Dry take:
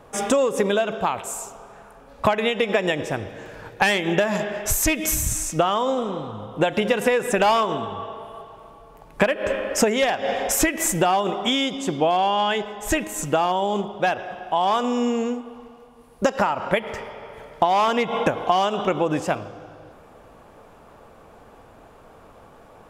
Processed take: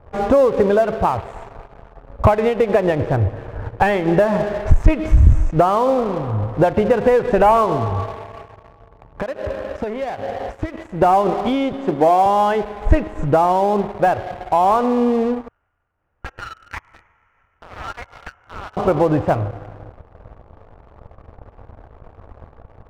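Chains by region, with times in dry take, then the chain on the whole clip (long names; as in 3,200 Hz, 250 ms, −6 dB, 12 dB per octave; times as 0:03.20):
0:08.14–0:11.02: high-pass filter 62 Hz + downward compressor 2.5 to 1, threshold −31 dBFS
0:11.72–0:12.26: high-pass filter 180 Hz 24 dB per octave + double-tracking delay 20 ms −13 dB
0:15.48–0:18.77: Chebyshev high-pass with heavy ripple 1,300 Hz, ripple 3 dB + sample-rate reduction 4,300 Hz
whole clip: low-pass filter 1,100 Hz 12 dB per octave; low shelf with overshoot 130 Hz +12 dB, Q 1.5; leveller curve on the samples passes 2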